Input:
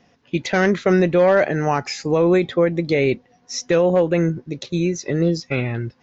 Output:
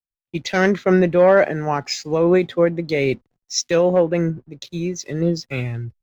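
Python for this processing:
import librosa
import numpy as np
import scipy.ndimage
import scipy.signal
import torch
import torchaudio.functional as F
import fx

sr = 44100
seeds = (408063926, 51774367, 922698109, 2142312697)

y = fx.backlash(x, sr, play_db=-44.0)
y = fx.band_widen(y, sr, depth_pct=100)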